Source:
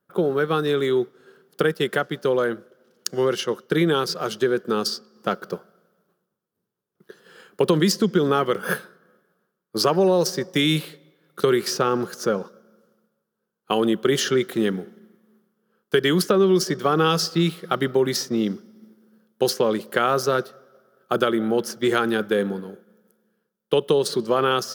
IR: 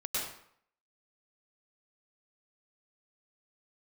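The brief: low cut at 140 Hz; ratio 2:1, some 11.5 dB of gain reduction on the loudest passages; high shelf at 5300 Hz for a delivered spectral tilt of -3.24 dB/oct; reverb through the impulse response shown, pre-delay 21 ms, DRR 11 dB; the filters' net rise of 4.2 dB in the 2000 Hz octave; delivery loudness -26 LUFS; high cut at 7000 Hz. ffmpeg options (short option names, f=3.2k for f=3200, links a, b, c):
-filter_complex "[0:a]highpass=140,lowpass=7k,equalizer=f=2k:t=o:g=6.5,highshelf=f=5.3k:g=-6.5,acompressor=threshold=-36dB:ratio=2,asplit=2[a][b];[1:a]atrim=start_sample=2205,adelay=21[c];[b][c]afir=irnorm=-1:irlink=0,volume=-16dB[d];[a][d]amix=inputs=2:normalize=0,volume=6.5dB"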